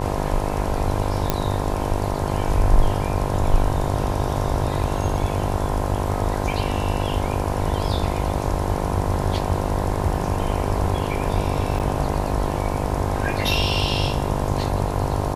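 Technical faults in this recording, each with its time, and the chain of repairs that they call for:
buzz 50 Hz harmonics 21 -26 dBFS
1.3 pop -4 dBFS
11.79–11.8 gap 8.3 ms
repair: de-click; de-hum 50 Hz, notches 21; interpolate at 11.79, 8.3 ms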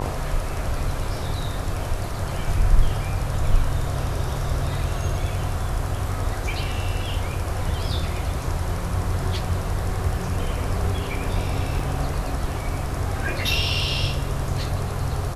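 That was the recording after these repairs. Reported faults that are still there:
none

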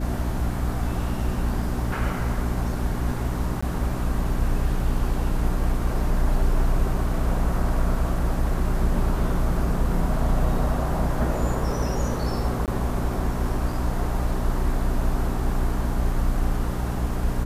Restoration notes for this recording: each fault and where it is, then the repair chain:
hum 60 Hz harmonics 5 -28 dBFS
3.61–3.62 gap 15 ms
12.66–12.68 gap 18 ms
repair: de-hum 60 Hz, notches 5; interpolate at 3.61, 15 ms; interpolate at 12.66, 18 ms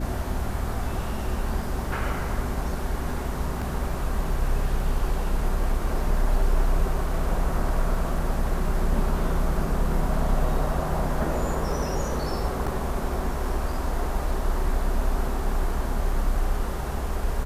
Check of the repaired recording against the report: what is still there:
none

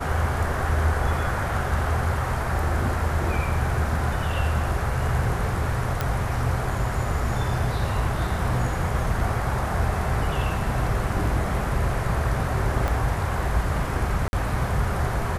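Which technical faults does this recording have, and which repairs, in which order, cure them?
6.01 pop -10 dBFS
12.88 pop
14.28–14.33 gap 51 ms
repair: de-click; interpolate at 14.28, 51 ms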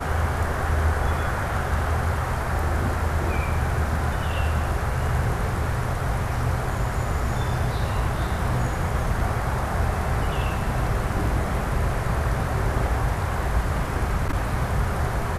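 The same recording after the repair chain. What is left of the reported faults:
12.88 pop

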